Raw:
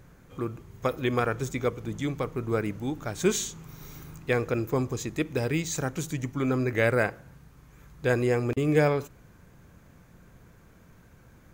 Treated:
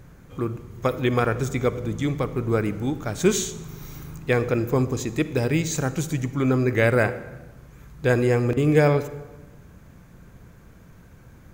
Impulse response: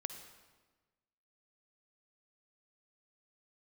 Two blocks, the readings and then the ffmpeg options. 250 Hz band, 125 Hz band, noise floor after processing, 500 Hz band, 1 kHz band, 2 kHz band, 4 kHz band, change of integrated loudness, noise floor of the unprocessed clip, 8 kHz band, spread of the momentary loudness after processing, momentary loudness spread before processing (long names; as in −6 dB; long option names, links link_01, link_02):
+5.0 dB, +6.5 dB, −49 dBFS, +4.5 dB, +4.0 dB, +3.5 dB, +3.5 dB, +5.0 dB, −56 dBFS, +3.5 dB, 16 LU, 11 LU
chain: -filter_complex "[0:a]asplit=2[link_01][link_02];[1:a]atrim=start_sample=2205,asetrate=48510,aresample=44100,lowshelf=frequency=330:gain=6.5[link_03];[link_02][link_03]afir=irnorm=-1:irlink=0,volume=0.5dB[link_04];[link_01][link_04]amix=inputs=2:normalize=0,volume=-1.5dB"